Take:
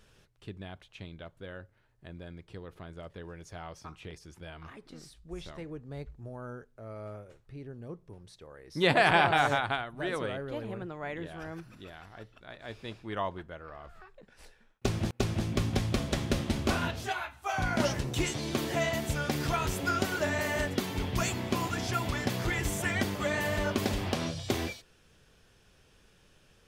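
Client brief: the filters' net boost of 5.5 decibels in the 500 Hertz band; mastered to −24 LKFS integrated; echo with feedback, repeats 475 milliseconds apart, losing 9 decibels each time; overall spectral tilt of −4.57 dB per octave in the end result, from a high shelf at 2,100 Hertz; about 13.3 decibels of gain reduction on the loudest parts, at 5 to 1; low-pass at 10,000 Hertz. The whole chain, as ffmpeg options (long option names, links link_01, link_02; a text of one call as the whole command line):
ffmpeg -i in.wav -af "lowpass=10000,equalizer=frequency=500:width_type=o:gain=7,highshelf=frequency=2100:gain=4,acompressor=threshold=-31dB:ratio=5,aecho=1:1:475|950|1425|1900:0.355|0.124|0.0435|0.0152,volume=12.5dB" out.wav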